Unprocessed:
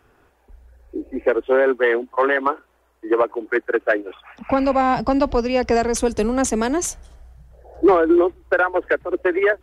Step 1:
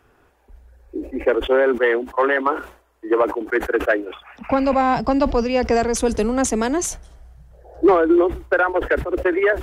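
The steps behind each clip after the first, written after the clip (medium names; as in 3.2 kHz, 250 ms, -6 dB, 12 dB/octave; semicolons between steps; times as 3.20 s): decay stretcher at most 130 dB/s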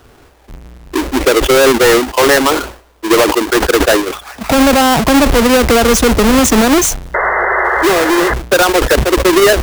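square wave that keeps the level; painted sound noise, 7.14–8.34 s, 350–2100 Hz -18 dBFS; peak limiter -14 dBFS, peak gain reduction 12 dB; trim +9 dB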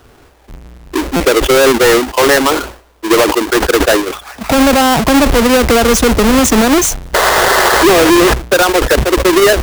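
square wave that keeps the level; buffer glitch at 1.16 s, samples 256, times 6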